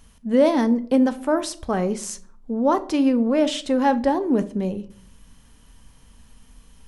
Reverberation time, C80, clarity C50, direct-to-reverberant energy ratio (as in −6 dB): 0.55 s, 22.5 dB, 17.5 dB, 11.0 dB